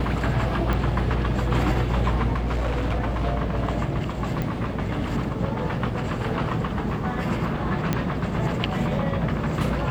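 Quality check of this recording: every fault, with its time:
0.73 pop -14 dBFS
2.34–3.25 clipped -20.5 dBFS
4.42 pop
7.93 pop -9 dBFS

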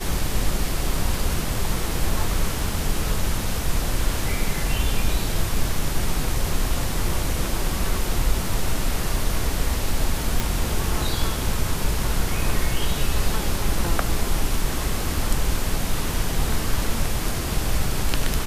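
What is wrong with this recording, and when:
10.4 pop

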